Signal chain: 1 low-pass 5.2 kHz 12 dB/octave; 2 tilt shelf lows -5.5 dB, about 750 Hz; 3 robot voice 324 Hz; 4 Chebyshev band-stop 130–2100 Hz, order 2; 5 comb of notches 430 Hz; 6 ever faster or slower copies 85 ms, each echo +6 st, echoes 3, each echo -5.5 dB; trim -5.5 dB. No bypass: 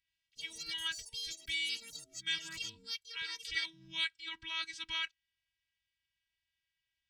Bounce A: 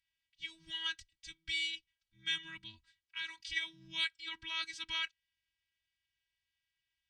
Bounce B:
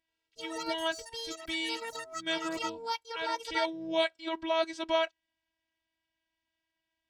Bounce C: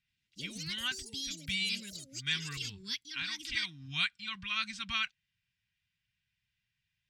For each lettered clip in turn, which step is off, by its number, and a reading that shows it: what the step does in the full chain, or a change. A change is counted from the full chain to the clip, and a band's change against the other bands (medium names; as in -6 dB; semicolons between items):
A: 6, 8 kHz band -7.5 dB; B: 4, 500 Hz band +29.5 dB; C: 3, 125 Hz band +12.5 dB